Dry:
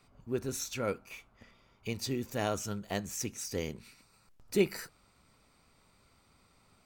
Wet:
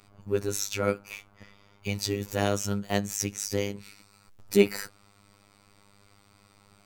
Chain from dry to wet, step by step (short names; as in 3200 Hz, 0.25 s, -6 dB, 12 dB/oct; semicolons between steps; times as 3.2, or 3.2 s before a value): robotiser 101 Hz; gain +8.5 dB